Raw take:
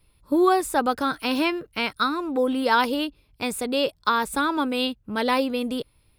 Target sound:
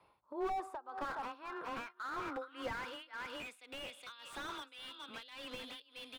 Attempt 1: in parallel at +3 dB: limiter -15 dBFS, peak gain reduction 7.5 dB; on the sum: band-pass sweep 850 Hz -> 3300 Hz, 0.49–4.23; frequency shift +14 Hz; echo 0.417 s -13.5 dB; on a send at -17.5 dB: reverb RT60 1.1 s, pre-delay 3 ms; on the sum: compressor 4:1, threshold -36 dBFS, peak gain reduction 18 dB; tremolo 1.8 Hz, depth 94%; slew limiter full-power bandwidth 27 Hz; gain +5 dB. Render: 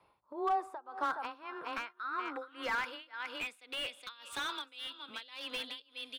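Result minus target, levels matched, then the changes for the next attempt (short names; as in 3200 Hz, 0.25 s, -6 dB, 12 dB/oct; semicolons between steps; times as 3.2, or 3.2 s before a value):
slew limiter: distortion -9 dB
change: slew limiter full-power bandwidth 7.5 Hz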